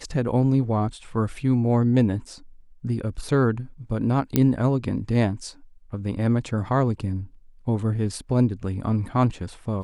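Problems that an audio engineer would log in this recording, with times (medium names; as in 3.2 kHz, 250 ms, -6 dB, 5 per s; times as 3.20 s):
4.36 s: pop -6 dBFS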